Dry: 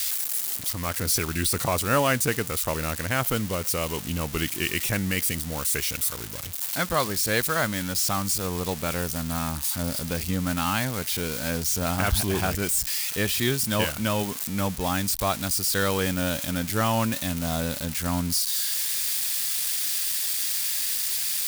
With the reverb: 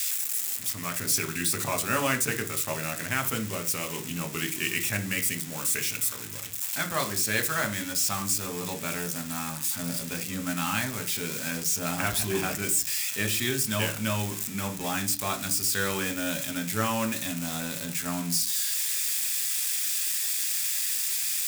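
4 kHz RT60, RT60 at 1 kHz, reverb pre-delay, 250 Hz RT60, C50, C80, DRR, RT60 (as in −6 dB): 0.45 s, 0.40 s, 3 ms, 0.50 s, 14.0 dB, 20.0 dB, 5.0 dB, 0.40 s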